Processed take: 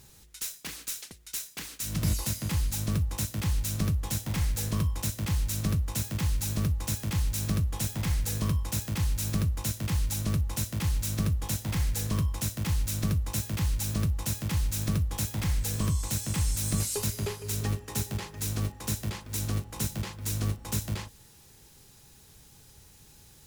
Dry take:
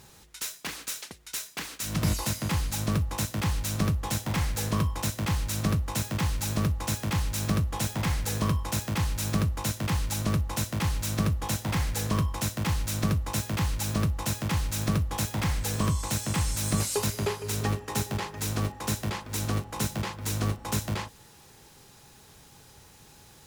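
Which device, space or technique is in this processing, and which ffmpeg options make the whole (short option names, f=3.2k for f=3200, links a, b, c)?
smiley-face EQ: -af "lowshelf=f=97:g=8.5,equalizer=f=930:t=o:w=1.7:g=-4.5,highshelf=f=6.4k:g=6.5,volume=-4.5dB"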